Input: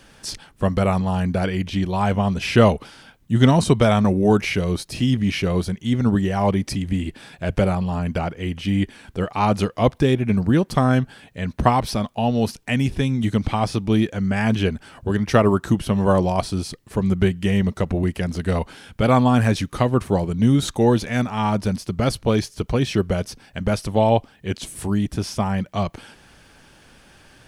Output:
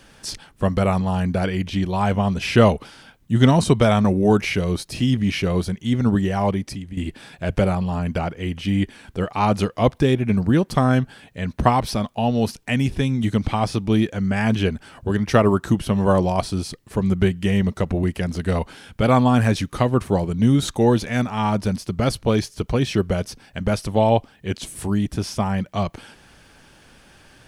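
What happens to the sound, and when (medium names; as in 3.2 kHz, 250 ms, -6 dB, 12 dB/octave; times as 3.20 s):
6.35–6.97 s: fade out, to -13.5 dB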